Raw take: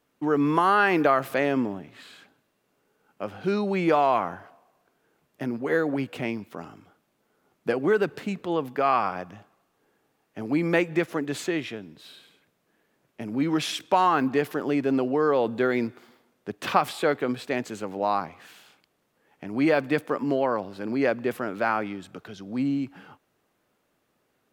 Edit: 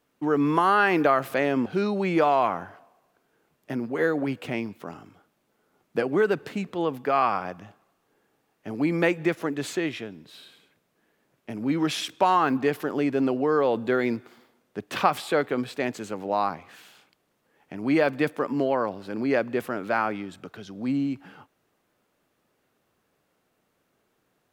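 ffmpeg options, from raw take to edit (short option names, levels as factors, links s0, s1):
-filter_complex "[0:a]asplit=2[s0][s1];[s0]atrim=end=1.662[s2];[s1]atrim=start=3.368[s3];[s2][s3]acrossfade=d=0.004:c1=hsin:c2=hsin"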